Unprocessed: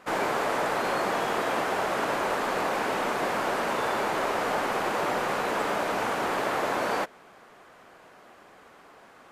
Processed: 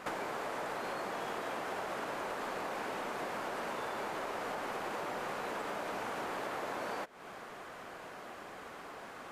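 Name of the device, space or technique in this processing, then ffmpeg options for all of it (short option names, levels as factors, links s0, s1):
serial compression, peaks first: -af "acompressor=threshold=0.0126:ratio=6,acompressor=threshold=0.00447:ratio=1.5,volume=1.78"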